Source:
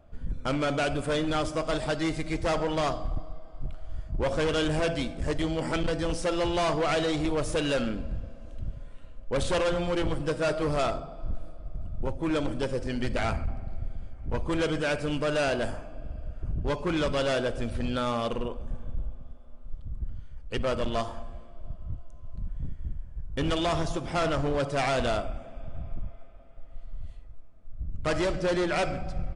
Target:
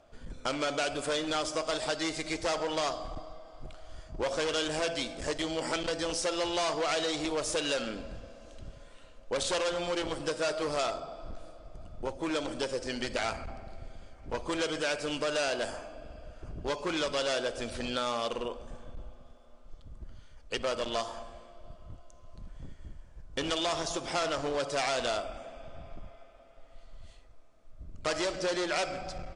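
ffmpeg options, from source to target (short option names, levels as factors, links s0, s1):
-af "lowpass=6600,bass=f=250:g=-14,treble=f=4000:g=12,acompressor=threshold=0.0224:ratio=2,volume=1.26"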